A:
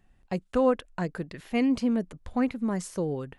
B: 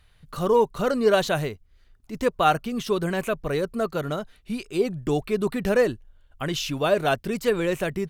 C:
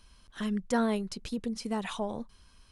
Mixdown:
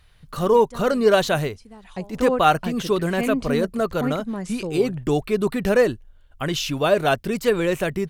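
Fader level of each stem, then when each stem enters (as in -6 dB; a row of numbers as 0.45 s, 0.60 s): -0.5 dB, +3.0 dB, -12.0 dB; 1.65 s, 0.00 s, 0.00 s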